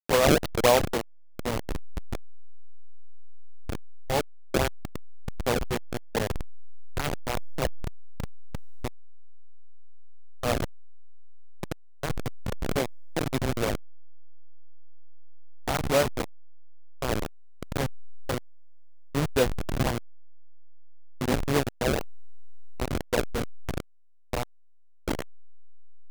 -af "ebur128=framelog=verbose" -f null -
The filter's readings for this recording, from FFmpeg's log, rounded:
Integrated loudness:
  I:         -29.7 LUFS
  Threshold: -40.3 LUFS
Loudness range:
  LRA:         6.8 LU
  Threshold: -52.6 LUFS
  LRA low:   -37.0 LUFS
  LRA high:  -30.2 LUFS